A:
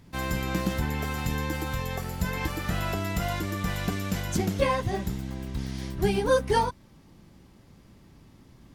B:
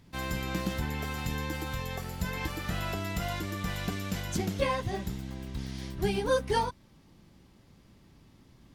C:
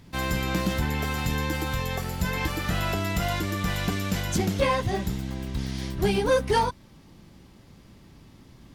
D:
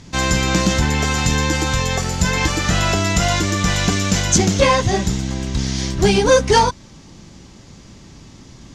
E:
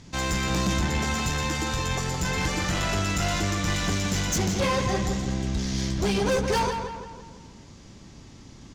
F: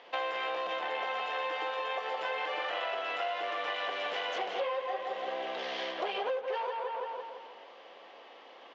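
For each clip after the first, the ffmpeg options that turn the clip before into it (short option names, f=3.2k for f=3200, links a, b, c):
-af "equalizer=f=3.6k:t=o:w=1.4:g=3,volume=-4.5dB"
-af "asoftclip=type=tanh:threshold=-21dB,volume=7dB"
-af "lowpass=f=6.6k:t=q:w=3.3,volume=9dB"
-filter_complex "[0:a]asoftclip=type=tanh:threshold=-15dB,asplit=2[a][b];[b]adelay=167,lowpass=f=3.5k:p=1,volume=-6dB,asplit=2[c][d];[d]adelay=167,lowpass=f=3.5k:p=1,volume=0.51,asplit=2[e][f];[f]adelay=167,lowpass=f=3.5k:p=1,volume=0.51,asplit=2[g][h];[h]adelay=167,lowpass=f=3.5k:p=1,volume=0.51,asplit=2[i][j];[j]adelay=167,lowpass=f=3.5k:p=1,volume=0.51,asplit=2[k][l];[l]adelay=167,lowpass=f=3.5k:p=1,volume=0.51[m];[c][e][g][i][k][m]amix=inputs=6:normalize=0[n];[a][n]amix=inputs=2:normalize=0,volume=-6.5dB"
-af "highpass=f=470:w=0.5412,highpass=f=470:w=1.3066,equalizer=f=510:t=q:w=4:g=10,equalizer=f=730:t=q:w=4:g=9,equalizer=f=1.1k:t=q:w=4:g=5,equalizer=f=1.8k:t=q:w=4:g=3,equalizer=f=3k:t=q:w=4:g=7,lowpass=f=3.3k:w=0.5412,lowpass=f=3.3k:w=1.3066,acompressor=threshold=-31dB:ratio=10"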